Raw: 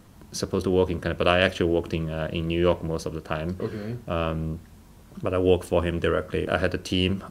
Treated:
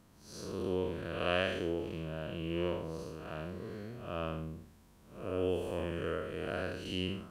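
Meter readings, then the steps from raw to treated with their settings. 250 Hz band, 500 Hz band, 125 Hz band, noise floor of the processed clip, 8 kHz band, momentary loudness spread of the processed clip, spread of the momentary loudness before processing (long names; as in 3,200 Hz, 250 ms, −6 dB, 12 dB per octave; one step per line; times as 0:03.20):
−11.5 dB, −11.5 dB, −12.5 dB, −61 dBFS, −14.0 dB, 11 LU, 10 LU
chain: spectrum smeared in time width 181 ms
low-shelf EQ 210 Hz −4.5 dB
level −8 dB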